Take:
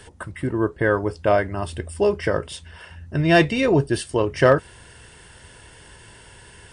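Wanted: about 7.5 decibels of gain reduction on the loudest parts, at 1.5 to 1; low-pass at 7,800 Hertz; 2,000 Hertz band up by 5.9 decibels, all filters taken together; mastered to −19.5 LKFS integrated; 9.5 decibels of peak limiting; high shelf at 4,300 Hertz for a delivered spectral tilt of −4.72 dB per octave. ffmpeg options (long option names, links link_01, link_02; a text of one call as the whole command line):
ffmpeg -i in.wav -af "lowpass=7800,equalizer=frequency=2000:width_type=o:gain=6,highshelf=frequency=4300:gain=8,acompressor=threshold=-30dB:ratio=1.5,volume=10dB,alimiter=limit=-8.5dB:level=0:latency=1" out.wav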